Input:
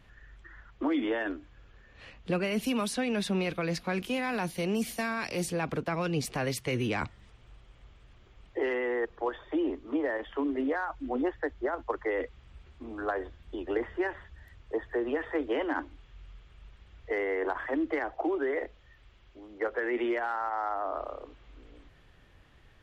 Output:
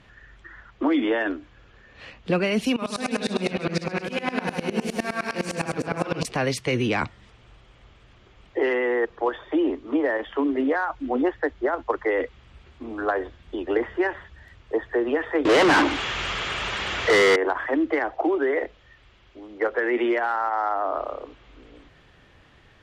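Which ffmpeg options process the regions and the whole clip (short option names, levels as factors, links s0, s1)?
-filter_complex "[0:a]asettb=1/sr,asplit=3[s0][s1][s2];[s0]atrim=end=2.764[s3];[s1]atrim=start=2.76:end=6.25,asetpts=PTS-STARTPTS,afade=t=in:d=0.004:c=qsin,afade=t=out:st=3.486:d=0.004:c=qsin,aecho=1:1:60|138|239.4|371.2|542.6:0.794|0.631|0.501|0.398|0.316,atrim=end_sample=153909,aeval=exprs='val(0)*pow(10,-22*if(lt(mod(-9.8*n/s,1),2*abs(-9.8)/1000),1-mod(-9.8*n/s,1)/(2*abs(-9.8)/1000),(mod(-9.8*n/s,1)-2*abs(-9.8)/1000)/(1-2*abs(-9.8)/1000))/20)':c=same[s4];[s2]atrim=start=6.246[s5];[s3][s4]acrossfade=d=0.004:c1=hsin:c2=qsin[s6];[s6][s5]acrossfade=d=0.004:c1=qsin:c2=hsin,asettb=1/sr,asplit=3[s7][s8][s9];[s7]atrim=end=15.454[s10];[s8]atrim=start=15.45:end=17.36,asetpts=PTS-STARTPTS,afade=t=in:d=0.004:c=qsin,afade=t=out:st=1.906:d=0.004:c=qsin,equalizer=f=7200:t=o:w=0.79:g=7,asplit=2[s11][s12];[s12]highpass=f=720:p=1,volume=79.4,asoftclip=type=tanh:threshold=0.126[s13];[s11][s13]amix=inputs=2:normalize=0,lowpass=f=3800:p=1,volume=0.501[s14];[s9]atrim=start=17.356[s15];[s10][s14]acrossfade=d=0.004:c1=hsin:c2=qsin[s16];[s16][s15]acrossfade=d=0.004:c1=qsin:c2=hsin,lowpass=7800,lowshelf=f=65:g=-11,volume=2.37"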